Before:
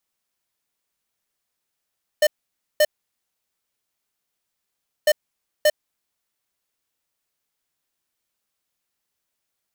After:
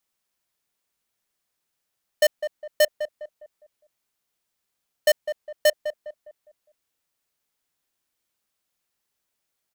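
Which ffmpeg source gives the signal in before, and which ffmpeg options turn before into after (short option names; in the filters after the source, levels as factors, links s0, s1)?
-f lavfi -i "aevalsrc='0.178*(2*lt(mod(604*t,1),0.5)-1)*clip(min(mod(mod(t,2.85),0.58),0.05-mod(mod(t,2.85),0.58))/0.005,0,1)*lt(mod(t,2.85),1.16)':d=5.7:s=44100"
-filter_complex "[0:a]asplit=2[s0][s1];[s1]adelay=204,lowpass=f=1200:p=1,volume=0.355,asplit=2[s2][s3];[s3]adelay=204,lowpass=f=1200:p=1,volume=0.41,asplit=2[s4][s5];[s5]adelay=204,lowpass=f=1200:p=1,volume=0.41,asplit=2[s6][s7];[s7]adelay=204,lowpass=f=1200:p=1,volume=0.41,asplit=2[s8][s9];[s9]adelay=204,lowpass=f=1200:p=1,volume=0.41[s10];[s0][s2][s4][s6][s8][s10]amix=inputs=6:normalize=0"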